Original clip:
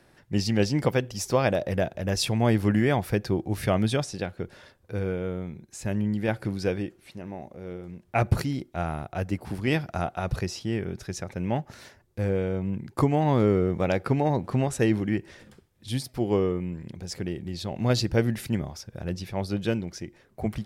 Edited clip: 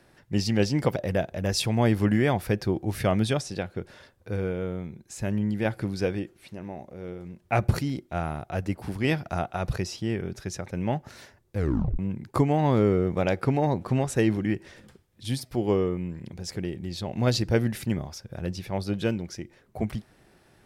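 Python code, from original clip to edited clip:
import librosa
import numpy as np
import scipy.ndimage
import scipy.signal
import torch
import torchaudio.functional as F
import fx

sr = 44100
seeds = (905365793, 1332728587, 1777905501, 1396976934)

y = fx.edit(x, sr, fx.cut(start_s=0.96, length_s=0.63),
    fx.tape_stop(start_s=12.2, length_s=0.42), tone=tone)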